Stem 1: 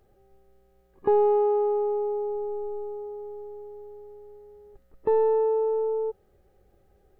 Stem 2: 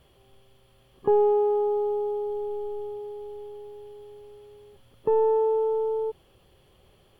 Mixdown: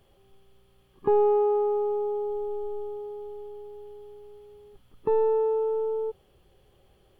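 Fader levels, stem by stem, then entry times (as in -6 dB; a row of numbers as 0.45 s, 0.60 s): -1.5 dB, -5.5 dB; 0.00 s, 0.00 s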